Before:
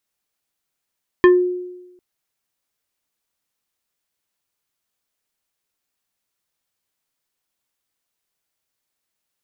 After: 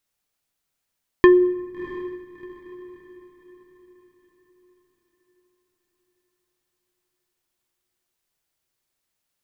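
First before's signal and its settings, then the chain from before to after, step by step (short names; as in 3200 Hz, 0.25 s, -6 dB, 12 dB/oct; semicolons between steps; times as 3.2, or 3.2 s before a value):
FM tone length 0.75 s, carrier 360 Hz, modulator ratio 3.93, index 0.79, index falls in 0.24 s exponential, decay 1.02 s, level -5 dB
low shelf 110 Hz +6.5 dB; diffused feedback echo 0.686 s, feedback 41%, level -15.5 dB; shoebox room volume 3000 m³, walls mixed, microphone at 0.31 m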